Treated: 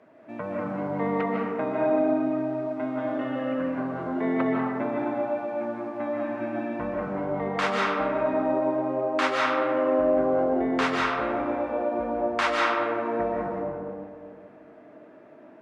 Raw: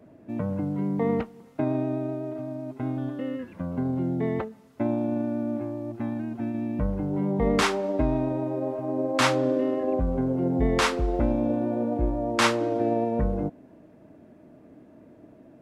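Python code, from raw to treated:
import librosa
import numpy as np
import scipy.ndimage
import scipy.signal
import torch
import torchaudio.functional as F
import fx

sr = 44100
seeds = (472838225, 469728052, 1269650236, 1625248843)

y = fx.bandpass_q(x, sr, hz=1500.0, q=0.83)
y = fx.rider(y, sr, range_db=4, speed_s=0.5)
y = fx.rev_freeverb(y, sr, rt60_s=2.2, hf_ratio=0.35, predelay_ms=110, drr_db=-3.5)
y = y * 10.0 ** (2.0 / 20.0)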